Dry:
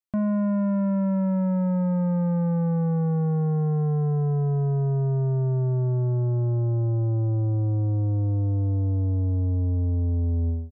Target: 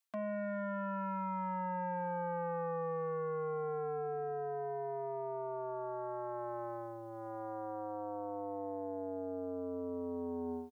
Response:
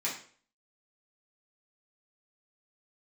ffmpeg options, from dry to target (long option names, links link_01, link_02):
-af "highpass=770,aecho=1:1:4.4:0.77,areverse,acompressor=threshold=-47dB:ratio=10,areverse,volume=11.5dB"